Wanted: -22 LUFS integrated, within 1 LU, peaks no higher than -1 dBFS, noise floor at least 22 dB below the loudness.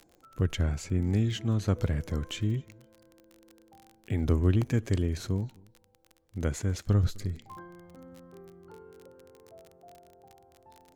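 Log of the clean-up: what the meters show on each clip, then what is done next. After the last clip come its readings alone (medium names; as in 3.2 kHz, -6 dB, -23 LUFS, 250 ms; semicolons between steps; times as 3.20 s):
tick rate 30 per s; loudness -30.0 LUFS; peak level -11.5 dBFS; loudness target -22.0 LUFS
-> de-click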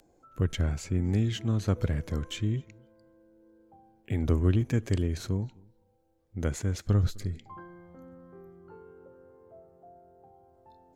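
tick rate 0.18 per s; loudness -30.0 LUFS; peak level -11.5 dBFS; loudness target -22.0 LUFS
-> trim +8 dB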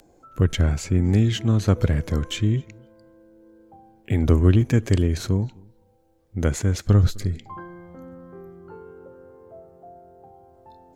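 loudness -22.0 LUFS; peak level -3.5 dBFS; noise floor -58 dBFS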